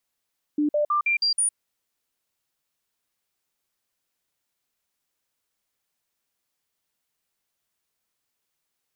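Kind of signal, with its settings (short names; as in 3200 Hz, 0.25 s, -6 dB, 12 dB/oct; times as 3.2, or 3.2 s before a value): stepped sine 297 Hz up, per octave 1, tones 6, 0.11 s, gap 0.05 s -19 dBFS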